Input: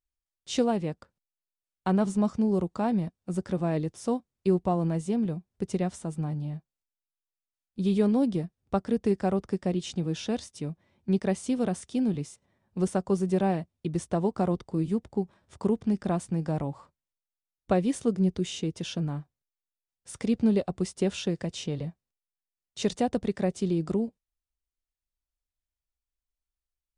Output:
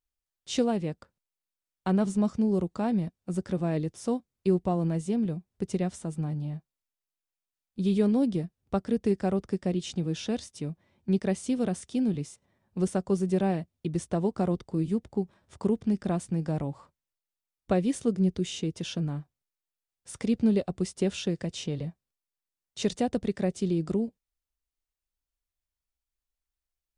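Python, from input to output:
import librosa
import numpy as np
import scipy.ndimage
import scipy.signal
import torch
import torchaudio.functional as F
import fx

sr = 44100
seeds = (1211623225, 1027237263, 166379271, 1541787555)

y = fx.dynamic_eq(x, sr, hz=940.0, q=1.2, threshold_db=-44.0, ratio=4.0, max_db=-4)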